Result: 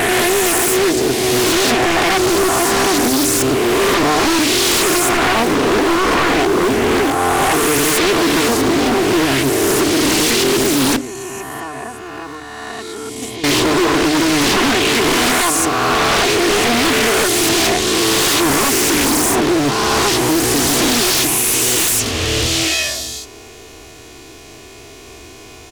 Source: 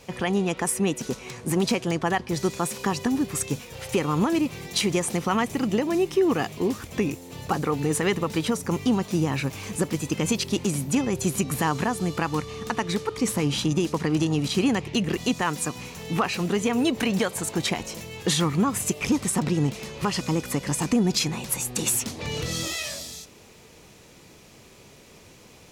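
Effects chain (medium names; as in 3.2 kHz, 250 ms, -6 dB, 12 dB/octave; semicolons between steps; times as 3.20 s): reverse spectral sustain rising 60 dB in 2.67 s; 10.96–13.44 s: gate -15 dBFS, range -16 dB; hum notches 50/100/150/200/250/300 Hz; comb 2.8 ms, depth 99%; wavefolder -16 dBFS; loudspeaker Doppler distortion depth 0.59 ms; trim +7 dB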